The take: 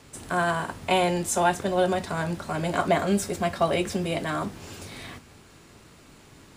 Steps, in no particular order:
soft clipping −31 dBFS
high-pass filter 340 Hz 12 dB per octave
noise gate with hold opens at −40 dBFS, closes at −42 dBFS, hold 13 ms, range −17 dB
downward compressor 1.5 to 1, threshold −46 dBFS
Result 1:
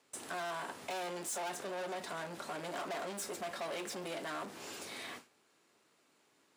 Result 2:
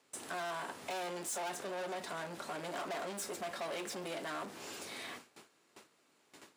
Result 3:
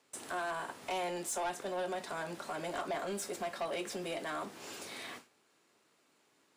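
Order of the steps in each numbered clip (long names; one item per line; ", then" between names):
soft clipping, then high-pass filter, then noise gate with hold, then downward compressor
noise gate with hold, then soft clipping, then high-pass filter, then downward compressor
high-pass filter, then noise gate with hold, then downward compressor, then soft clipping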